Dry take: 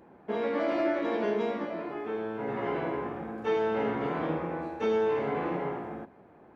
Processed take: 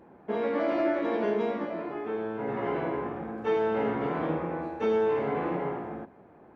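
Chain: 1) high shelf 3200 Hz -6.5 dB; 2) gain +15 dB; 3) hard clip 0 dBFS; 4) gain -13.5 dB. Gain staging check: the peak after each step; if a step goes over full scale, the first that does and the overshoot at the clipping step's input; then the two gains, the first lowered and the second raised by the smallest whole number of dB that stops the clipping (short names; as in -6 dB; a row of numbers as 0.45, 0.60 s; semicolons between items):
-18.0, -3.0, -3.0, -16.5 dBFS; no overload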